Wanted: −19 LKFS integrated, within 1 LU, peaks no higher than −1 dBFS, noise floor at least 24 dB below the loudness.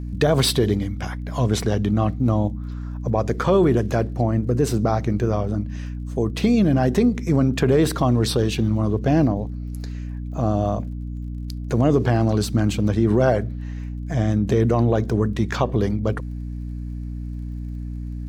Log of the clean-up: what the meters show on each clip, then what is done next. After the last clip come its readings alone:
crackle rate 31 per second; mains hum 60 Hz; hum harmonics up to 300 Hz; level of the hum −27 dBFS; integrated loudness −21.0 LKFS; sample peak −5.5 dBFS; target loudness −19.0 LKFS
→ click removal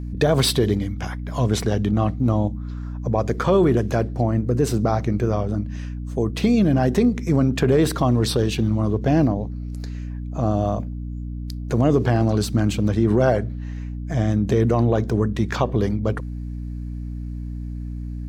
crackle rate 0.16 per second; mains hum 60 Hz; hum harmonics up to 300 Hz; level of the hum −27 dBFS
→ mains-hum notches 60/120/180/240/300 Hz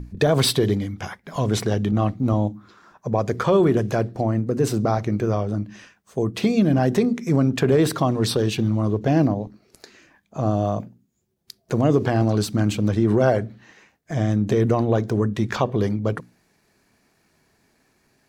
mains hum none found; integrated loudness −21.5 LKFS; sample peak −6.0 dBFS; target loudness −19.0 LKFS
→ level +2.5 dB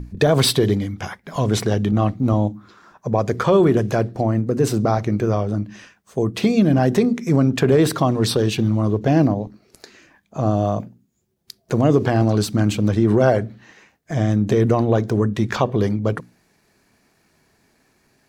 integrated loudness −19.0 LKFS; sample peak −3.5 dBFS; background noise floor −64 dBFS

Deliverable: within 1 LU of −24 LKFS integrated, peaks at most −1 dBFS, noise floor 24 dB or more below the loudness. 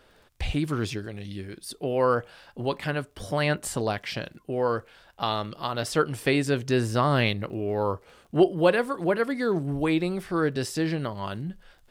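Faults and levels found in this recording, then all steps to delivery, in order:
crackle rate 29 per second; integrated loudness −27.0 LKFS; sample peak −7.5 dBFS; target loudness −24.0 LKFS
→ click removal
level +3 dB

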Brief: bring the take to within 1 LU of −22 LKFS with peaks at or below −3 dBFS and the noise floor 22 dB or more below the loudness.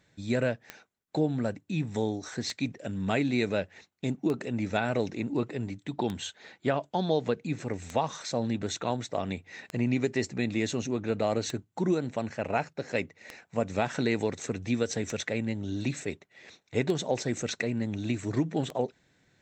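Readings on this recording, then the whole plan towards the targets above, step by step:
number of clicks 11; integrated loudness −31.0 LKFS; sample peak −13.0 dBFS; target loudness −22.0 LKFS
→ click removal
level +9 dB

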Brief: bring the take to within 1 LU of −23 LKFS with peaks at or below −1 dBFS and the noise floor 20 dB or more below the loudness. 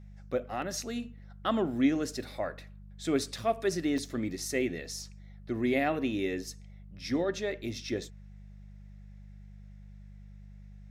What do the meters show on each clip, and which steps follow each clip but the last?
number of dropouts 3; longest dropout 2.0 ms; mains hum 50 Hz; hum harmonics up to 200 Hz; level of the hum −46 dBFS; integrated loudness −32.5 LKFS; sample peak −14.5 dBFS; target loudness −23.0 LKFS
→ repair the gap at 0:00.62/0:03.98/0:06.47, 2 ms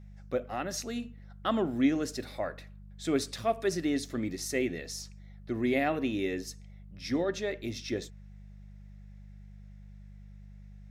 number of dropouts 0; mains hum 50 Hz; hum harmonics up to 200 Hz; level of the hum −46 dBFS
→ hum removal 50 Hz, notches 4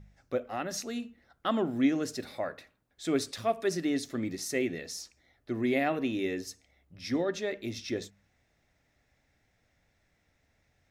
mains hum none found; integrated loudness −32.5 LKFS; sample peak −14.5 dBFS; target loudness −23.0 LKFS
→ level +9.5 dB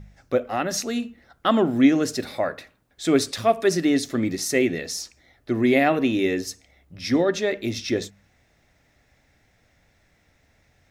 integrated loudness −23.0 LKFS; sample peak −5.0 dBFS; background noise floor −64 dBFS

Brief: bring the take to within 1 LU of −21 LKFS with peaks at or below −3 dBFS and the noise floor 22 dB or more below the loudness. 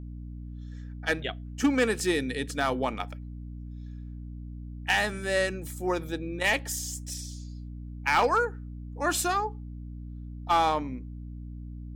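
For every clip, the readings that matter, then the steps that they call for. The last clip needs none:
share of clipped samples 0.3%; peaks flattened at −16.5 dBFS; mains hum 60 Hz; hum harmonics up to 300 Hz; level of the hum −37 dBFS; integrated loudness −28.5 LKFS; sample peak −16.5 dBFS; target loudness −21.0 LKFS
→ clipped peaks rebuilt −16.5 dBFS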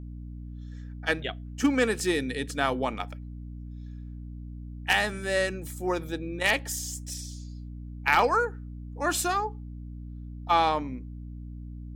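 share of clipped samples 0.0%; mains hum 60 Hz; hum harmonics up to 300 Hz; level of the hum −37 dBFS
→ mains-hum notches 60/120/180/240/300 Hz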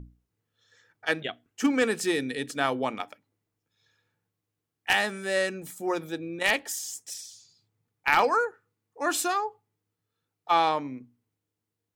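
mains hum none found; integrated loudness −27.5 LKFS; sample peak −7.0 dBFS; target loudness −21.0 LKFS
→ level +6.5 dB
brickwall limiter −3 dBFS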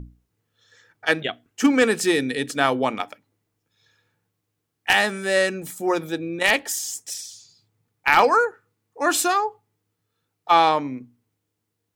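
integrated loudness −21.5 LKFS; sample peak −3.0 dBFS; background noise floor −78 dBFS

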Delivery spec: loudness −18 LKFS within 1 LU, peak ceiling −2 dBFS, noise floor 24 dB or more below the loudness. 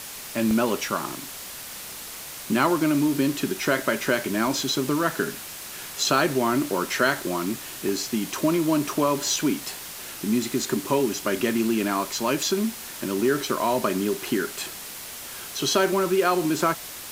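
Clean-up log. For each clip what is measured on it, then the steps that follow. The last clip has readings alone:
number of dropouts 4; longest dropout 1.1 ms; background noise floor −38 dBFS; target noise floor −49 dBFS; integrated loudness −25.0 LKFS; sample peak −7.0 dBFS; target loudness −18.0 LKFS
→ repair the gap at 0:00.51/0:04.47/0:06.77/0:07.89, 1.1 ms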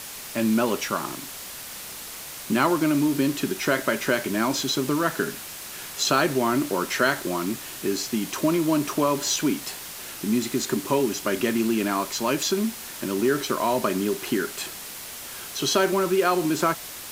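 number of dropouts 0; background noise floor −38 dBFS; target noise floor −49 dBFS
→ broadband denoise 11 dB, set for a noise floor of −38 dBFS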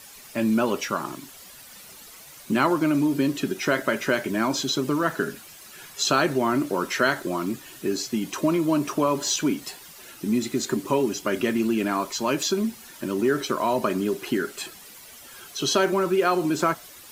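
background noise floor −46 dBFS; target noise floor −49 dBFS
→ broadband denoise 6 dB, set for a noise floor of −46 dBFS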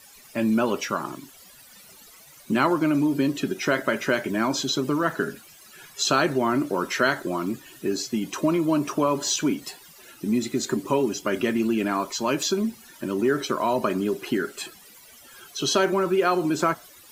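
background noise floor −50 dBFS; integrated loudness −24.5 LKFS; sample peak −7.5 dBFS; target loudness −18.0 LKFS
→ level +6.5 dB
brickwall limiter −2 dBFS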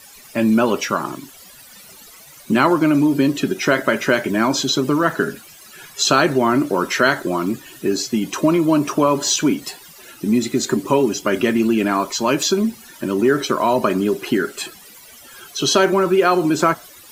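integrated loudness −18.0 LKFS; sample peak −2.0 dBFS; background noise floor −43 dBFS

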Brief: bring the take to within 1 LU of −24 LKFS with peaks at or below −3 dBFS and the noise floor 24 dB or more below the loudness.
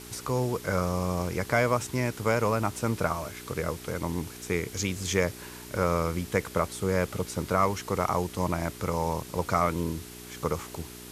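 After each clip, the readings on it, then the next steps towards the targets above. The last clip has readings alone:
mains hum 60 Hz; hum harmonics up to 420 Hz; level of the hum −45 dBFS; background noise floor −44 dBFS; target noise floor −53 dBFS; integrated loudness −29.0 LKFS; sample peak −10.0 dBFS; target loudness −24.0 LKFS
→ hum removal 60 Hz, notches 7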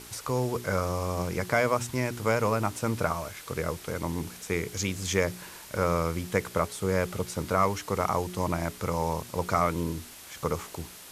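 mains hum none found; background noise floor −47 dBFS; target noise floor −54 dBFS
→ noise reduction from a noise print 7 dB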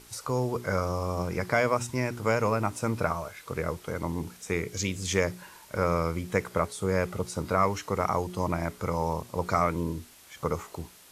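background noise floor −53 dBFS; target noise floor −54 dBFS
→ noise reduction from a noise print 6 dB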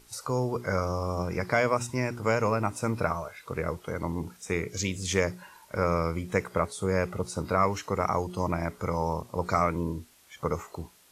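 background noise floor −57 dBFS; integrated loudness −29.5 LKFS; sample peak −10.0 dBFS; target loudness −24.0 LKFS
→ level +5.5 dB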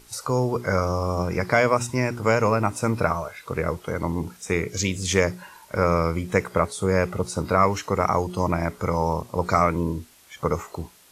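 integrated loudness −24.0 LKFS; sample peak −4.5 dBFS; background noise floor −52 dBFS

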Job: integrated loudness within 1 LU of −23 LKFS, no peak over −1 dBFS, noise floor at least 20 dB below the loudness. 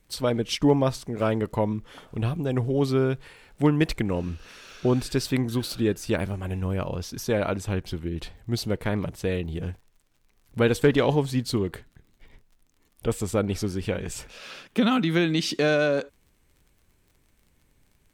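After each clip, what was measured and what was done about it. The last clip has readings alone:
crackle rate 36 per second; integrated loudness −26.0 LKFS; sample peak −8.0 dBFS; target loudness −23.0 LKFS
→ click removal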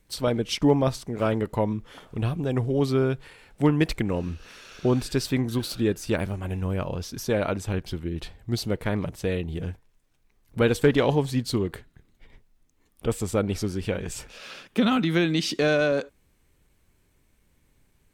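crackle rate 0.50 per second; integrated loudness −26.0 LKFS; sample peak −8.0 dBFS; target loudness −23.0 LKFS
→ level +3 dB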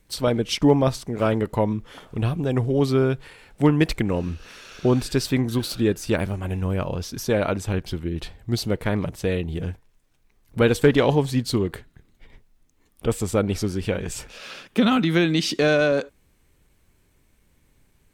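integrated loudness −23.0 LKFS; sample peak −5.0 dBFS; background noise floor −63 dBFS

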